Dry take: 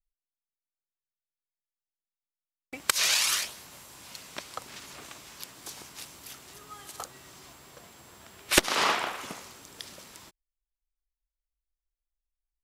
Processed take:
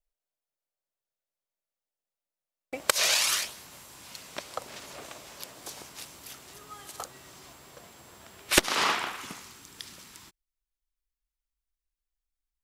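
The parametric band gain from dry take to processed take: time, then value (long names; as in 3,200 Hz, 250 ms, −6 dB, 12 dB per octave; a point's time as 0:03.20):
parametric band 580 Hz 0.91 octaves
0:02.90 +12 dB
0:03.52 0 dB
0:04.16 0 dB
0:04.59 +8.5 dB
0:05.54 +8.5 dB
0:06.04 +2 dB
0:08.41 +2 dB
0:09.23 −9 dB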